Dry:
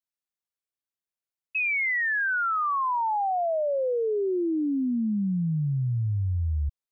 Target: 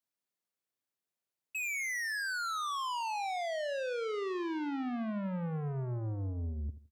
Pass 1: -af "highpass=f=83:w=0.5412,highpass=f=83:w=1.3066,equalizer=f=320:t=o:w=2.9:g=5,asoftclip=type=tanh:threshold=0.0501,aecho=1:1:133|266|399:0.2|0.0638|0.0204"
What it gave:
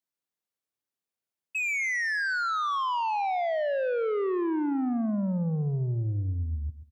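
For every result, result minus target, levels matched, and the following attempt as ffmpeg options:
echo 52 ms late; saturation: distortion -5 dB
-af "highpass=f=83:w=0.5412,highpass=f=83:w=1.3066,equalizer=f=320:t=o:w=2.9:g=5,asoftclip=type=tanh:threshold=0.0501,aecho=1:1:81|162|243:0.2|0.0638|0.0204"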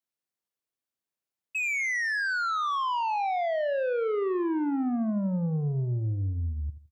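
saturation: distortion -5 dB
-af "highpass=f=83:w=0.5412,highpass=f=83:w=1.3066,equalizer=f=320:t=o:w=2.9:g=5,asoftclip=type=tanh:threshold=0.0178,aecho=1:1:81|162|243:0.2|0.0638|0.0204"

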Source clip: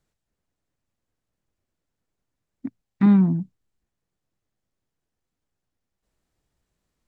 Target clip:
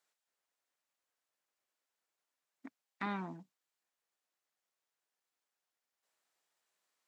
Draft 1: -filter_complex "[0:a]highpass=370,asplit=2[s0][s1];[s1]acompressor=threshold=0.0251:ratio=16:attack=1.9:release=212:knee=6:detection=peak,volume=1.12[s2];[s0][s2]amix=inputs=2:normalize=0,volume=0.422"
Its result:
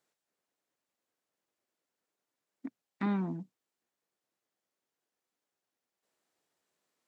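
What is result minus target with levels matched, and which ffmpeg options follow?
1 kHz band -7.5 dB
-filter_complex "[0:a]highpass=770,asplit=2[s0][s1];[s1]acompressor=threshold=0.0251:ratio=16:attack=1.9:release=212:knee=6:detection=peak,volume=1.12[s2];[s0][s2]amix=inputs=2:normalize=0,volume=0.422"

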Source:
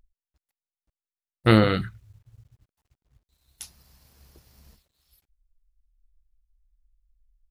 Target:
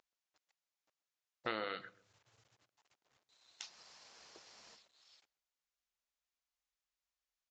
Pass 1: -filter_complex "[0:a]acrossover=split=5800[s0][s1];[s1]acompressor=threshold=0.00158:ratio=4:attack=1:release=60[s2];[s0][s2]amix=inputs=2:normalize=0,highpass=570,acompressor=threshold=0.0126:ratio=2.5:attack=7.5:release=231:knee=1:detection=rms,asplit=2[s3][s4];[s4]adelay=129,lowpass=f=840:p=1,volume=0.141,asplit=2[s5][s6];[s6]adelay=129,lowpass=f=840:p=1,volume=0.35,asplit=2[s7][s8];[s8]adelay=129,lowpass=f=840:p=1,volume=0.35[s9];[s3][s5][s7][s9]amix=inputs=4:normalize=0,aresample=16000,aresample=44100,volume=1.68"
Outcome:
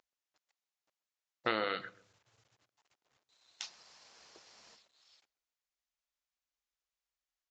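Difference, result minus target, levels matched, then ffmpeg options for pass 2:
compression: peak gain reduction -6.5 dB
-filter_complex "[0:a]acrossover=split=5800[s0][s1];[s1]acompressor=threshold=0.00158:ratio=4:attack=1:release=60[s2];[s0][s2]amix=inputs=2:normalize=0,highpass=570,acompressor=threshold=0.00376:ratio=2.5:attack=7.5:release=231:knee=1:detection=rms,asplit=2[s3][s4];[s4]adelay=129,lowpass=f=840:p=1,volume=0.141,asplit=2[s5][s6];[s6]adelay=129,lowpass=f=840:p=1,volume=0.35,asplit=2[s7][s8];[s8]adelay=129,lowpass=f=840:p=1,volume=0.35[s9];[s3][s5][s7][s9]amix=inputs=4:normalize=0,aresample=16000,aresample=44100,volume=1.68"

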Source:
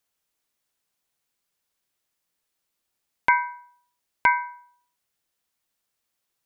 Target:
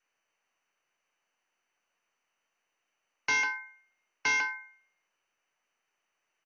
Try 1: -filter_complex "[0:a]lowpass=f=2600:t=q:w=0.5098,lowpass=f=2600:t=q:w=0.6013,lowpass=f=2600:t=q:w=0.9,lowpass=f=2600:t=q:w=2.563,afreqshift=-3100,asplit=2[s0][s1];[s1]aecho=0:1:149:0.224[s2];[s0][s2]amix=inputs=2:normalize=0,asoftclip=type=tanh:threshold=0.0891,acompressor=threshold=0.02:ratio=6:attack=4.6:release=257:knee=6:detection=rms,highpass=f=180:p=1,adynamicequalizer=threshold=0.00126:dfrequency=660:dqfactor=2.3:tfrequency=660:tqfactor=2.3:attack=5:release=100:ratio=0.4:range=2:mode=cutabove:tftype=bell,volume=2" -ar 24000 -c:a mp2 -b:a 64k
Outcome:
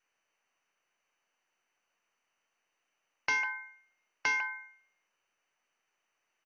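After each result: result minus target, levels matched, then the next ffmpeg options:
compression: peak gain reduction +10.5 dB; saturation: distortion -5 dB
-filter_complex "[0:a]lowpass=f=2600:t=q:w=0.5098,lowpass=f=2600:t=q:w=0.6013,lowpass=f=2600:t=q:w=0.9,lowpass=f=2600:t=q:w=2.563,afreqshift=-3100,asplit=2[s0][s1];[s1]aecho=0:1:149:0.224[s2];[s0][s2]amix=inputs=2:normalize=0,asoftclip=type=tanh:threshold=0.0891,highpass=f=180:p=1,adynamicequalizer=threshold=0.00126:dfrequency=660:dqfactor=2.3:tfrequency=660:tqfactor=2.3:attack=5:release=100:ratio=0.4:range=2:mode=cutabove:tftype=bell,volume=2" -ar 24000 -c:a mp2 -b:a 64k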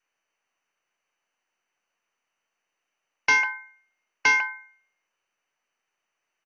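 saturation: distortion -5 dB
-filter_complex "[0:a]lowpass=f=2600:t=q:w=0.5098,lowpass=f=2600:t=q:w=0.6013,lowpass=f=2600:t=q:w=0.9,lowpass=f=2600:t=q:w=2.563,afreqshift=-3100,asplit=2[s0][s1];[s1]aecho=0:1:149:0.224[s2];[s0][s2]amix=inputs=2:normalize=0,asoftclip=type=tanh:threshold=0.0282,highpass=f=180:p=1,adynamicequalizer=threshold=0.00126:dfrequency=660:dqfactor=2.3:tfrequency=660:tqfactor=2.3:attack=5:release=100:ratio=0.4:range=2:mode=cutabove:tftype=bell,volume=2" -ar 24000 -c:a mp2 -b:a 64k

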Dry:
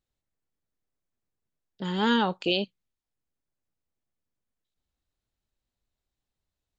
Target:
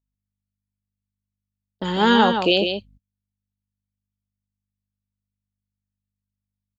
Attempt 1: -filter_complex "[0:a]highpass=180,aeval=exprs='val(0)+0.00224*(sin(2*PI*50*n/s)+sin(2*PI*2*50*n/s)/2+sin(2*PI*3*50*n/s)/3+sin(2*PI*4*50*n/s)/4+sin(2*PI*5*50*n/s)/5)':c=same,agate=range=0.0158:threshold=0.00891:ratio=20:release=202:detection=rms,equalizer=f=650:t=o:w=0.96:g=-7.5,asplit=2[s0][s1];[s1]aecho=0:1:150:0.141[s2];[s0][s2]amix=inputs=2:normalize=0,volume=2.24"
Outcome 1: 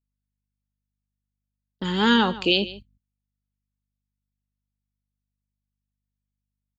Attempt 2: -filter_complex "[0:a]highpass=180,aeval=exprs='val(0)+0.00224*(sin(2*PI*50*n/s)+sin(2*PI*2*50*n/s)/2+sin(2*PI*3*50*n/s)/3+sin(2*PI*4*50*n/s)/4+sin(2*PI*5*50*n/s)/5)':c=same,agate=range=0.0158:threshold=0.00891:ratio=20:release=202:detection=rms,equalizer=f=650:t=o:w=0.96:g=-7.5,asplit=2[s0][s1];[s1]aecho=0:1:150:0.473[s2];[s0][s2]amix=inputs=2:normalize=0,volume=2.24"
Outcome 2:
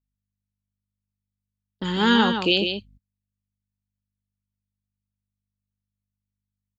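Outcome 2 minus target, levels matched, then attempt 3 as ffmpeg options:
500 Hz band -3.0 dB
-filter_complex "[0:a]highpass=180,aeval=exprs='val(0)+0.00224*(sin(2*PI*50*n/s)+sin(2*PI*2*50*n/s)/2+sin(2*PI*3*50*n/s)/3+sin(2*PI*4*50*n/s)/4+sin(2*PI*5*50*n/s)/5)':c=same,agate=range=0.0158:threshold=0.00891:ratio=20:release=202:detection=rms,equalizer=f=650:t=o:w=0.96:g=3.5,asplit=2[s0][s1];[s1]aecho=0:1:150:0.473[s2];[s0][s2]amix=inputs=2:normalize=0,volume=2.24"

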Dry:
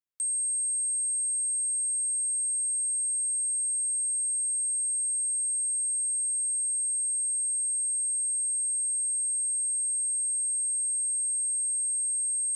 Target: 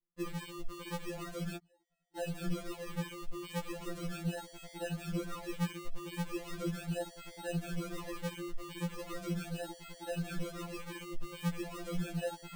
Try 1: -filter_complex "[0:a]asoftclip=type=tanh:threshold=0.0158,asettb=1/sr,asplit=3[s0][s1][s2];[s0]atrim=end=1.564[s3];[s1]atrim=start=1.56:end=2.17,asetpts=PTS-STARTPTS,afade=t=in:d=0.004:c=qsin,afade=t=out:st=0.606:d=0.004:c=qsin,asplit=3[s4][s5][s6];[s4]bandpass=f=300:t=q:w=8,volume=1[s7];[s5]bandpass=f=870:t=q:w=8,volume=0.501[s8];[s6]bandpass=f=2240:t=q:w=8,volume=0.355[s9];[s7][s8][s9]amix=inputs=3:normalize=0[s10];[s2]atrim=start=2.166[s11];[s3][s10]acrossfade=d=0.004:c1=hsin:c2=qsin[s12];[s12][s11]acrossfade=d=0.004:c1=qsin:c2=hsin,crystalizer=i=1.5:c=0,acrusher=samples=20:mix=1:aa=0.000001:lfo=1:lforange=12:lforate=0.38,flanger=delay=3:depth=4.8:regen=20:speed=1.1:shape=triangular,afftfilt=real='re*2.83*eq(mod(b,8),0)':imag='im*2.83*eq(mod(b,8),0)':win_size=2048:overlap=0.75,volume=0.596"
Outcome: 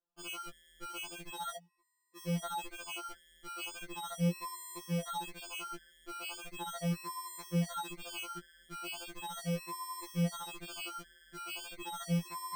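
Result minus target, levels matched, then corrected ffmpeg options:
decimation with a swept rate: distortion -5 dB
-filter_complex "[0:a]asoftclip=type=tanh:threshold=0.0158,asettb=1/sr,asplit=3[s0][s1][s2];[s0]atrim=end=1.564[s3];[s1]atrim=start=1.56:end=2.17,asetpts=PTS-STARTPTS,afade=t=in:d=0.004:c=qsin,afade=t=out:st=0.606:d=0.004:c=qsin,asplit=3[s4][s5][s6];[s4]bandpass=f=300:t=q:w=8,volume=1[s7];[s5]bandpass=f=870:t=q:w=8,volume=0.501[s8];[s6]bandpass=f=2240:t=q:w=8,volume=0.355[s9];[s7][s8][s9]amix=inputs=3:normalize=0[s10];[s2]atrim=start=2.166[s11];[s3][s10]acrossfade=d=0.004:c1=hsin:c2=qsin[s12];[s12][s11]acrossfade=d=0.004:c1=qsin:c2=hsin,crystalizer=i=1.5:c=0,acrusher=samples=52:mix=1:aa=0.000001:lfo=1:lforange=31.2:lforate=0.38,flanger=delay=3:depth=4.8:regen=20:speed=1.1:shape=triangular,afftfilt=real='re*2.83*eq(mod(b,8),0)':imag='im*2.83*eq(mod(b,8),0)':win_size=2048:overlap=0.75,volume=0.596"

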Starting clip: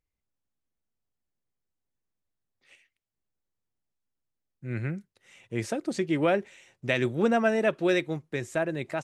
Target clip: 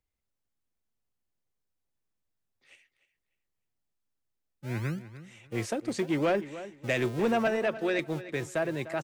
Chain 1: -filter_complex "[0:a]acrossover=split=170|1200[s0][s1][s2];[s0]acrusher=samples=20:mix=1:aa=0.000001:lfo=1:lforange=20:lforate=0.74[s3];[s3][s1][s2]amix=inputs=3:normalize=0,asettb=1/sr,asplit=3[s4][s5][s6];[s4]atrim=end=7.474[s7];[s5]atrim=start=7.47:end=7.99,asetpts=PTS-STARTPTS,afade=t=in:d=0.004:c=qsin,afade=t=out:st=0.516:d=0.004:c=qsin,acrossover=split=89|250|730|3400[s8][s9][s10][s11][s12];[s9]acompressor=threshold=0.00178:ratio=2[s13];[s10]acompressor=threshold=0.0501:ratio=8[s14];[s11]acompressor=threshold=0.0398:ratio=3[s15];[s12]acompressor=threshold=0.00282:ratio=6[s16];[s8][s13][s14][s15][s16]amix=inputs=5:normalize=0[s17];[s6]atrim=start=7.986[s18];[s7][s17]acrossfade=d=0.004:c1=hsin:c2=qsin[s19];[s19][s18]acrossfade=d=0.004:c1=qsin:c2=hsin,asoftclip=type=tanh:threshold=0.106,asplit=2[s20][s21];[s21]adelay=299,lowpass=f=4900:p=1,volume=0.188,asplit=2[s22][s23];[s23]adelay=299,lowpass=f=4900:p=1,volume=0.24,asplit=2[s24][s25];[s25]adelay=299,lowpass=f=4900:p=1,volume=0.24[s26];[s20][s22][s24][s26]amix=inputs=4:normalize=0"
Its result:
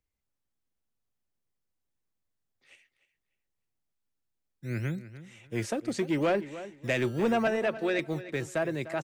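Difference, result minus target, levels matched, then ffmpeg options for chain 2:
decimation with a swept rate: distortion -9 dB
-filter_complex "[0:a]acrossover=split=170|1200[s0][s1][s2];[s0]acrusher=samples=52:mix=1:aa=0.000001:lfo=1:lforange=52:lforate=0.74[s3];[s3][s1][s2]amix=inputs=3:normalize=0,asettb=1/sr,asplit=3[s4][s5][s6];[s4]atrim=end=7.474[s7];[s5]atrim=start=7.47:end=7.99,asetpts=PTS-STARTPTS,afade=t=in:d=0.004:c=qsin,afade=t=out:st=0.516:d=0.004:c=qsin,acrossover=split=89|250|730|3400[s8][s9][s10][s11][s12];[s9]acompressor=threshold=0.00178:ratio=2[s13];[s10]acompressor=threshold=0.0501:ratio=8[s14];[s11]acompressor=threshold=0.0398:ratio=3[s15];[s12]acompressor=threshold=0.00282:ratio=6[s16];[s8][s13][s14][s15][s16]amix=inputs=5:normalize=0[s17];[s6]atrim=start=7.986[s18];[s7][s17]acrossfade=d=0.004:c1=hsin:c2=qsin[s19];[s19][s18]acrossfade=d=0.004:c1=qsin:c2=hsin,asoftclip=type=tanh:threshold=0.106,asplit=2[s20][s21];[s21]adelay=299,lowpass=f=4900:p=1,volume=0.188,asplit=2[s22][s23];[s23]adelay=299,lowpass=f=4900:p=1,volume=0.24,asplit=2[s24][s25];[s25]adelay=299,lowpass=f=4900:p=1,volume=0.24[s26];[s20][s22][s24][s26]amix=inputs=4:normalize=0"

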